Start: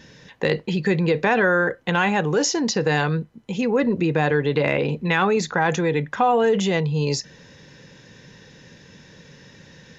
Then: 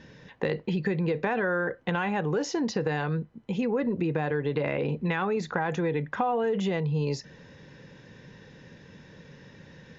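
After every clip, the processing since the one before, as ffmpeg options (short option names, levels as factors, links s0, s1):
-af "aemphasis=mode=reproduction:type=75fm,acompressor=threshold=0.0794:ratio=4,volume=0.75"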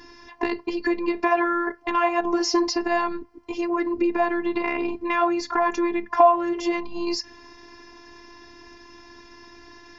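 -af "superequalizer=8b=0.355:9b=2.82:13b=0.631:14b=2.24,afftfilt=real='hypot(re,im)*cos(PI*b)':imag='0':win_size=512:overlap=0.75,volume=2.66"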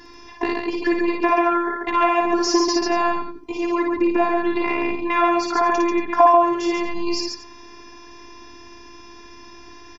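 -af "aecho=1:1:56|139|231:0.668|0.631|0.158,volume=1.19"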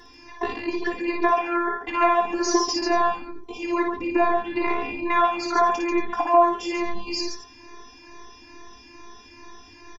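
-filter_complex "[0:a]asplit=2[s0][s1];[s1]adelay=22,volume=0.299[s2];[s0][s2]amix=inputs=2:normalize=0,asplit=2[s3][s4];[s4]adelay=2.3,afreqshift=2.3[s5];[s3][s5]amix=inputs=2:normalize=1"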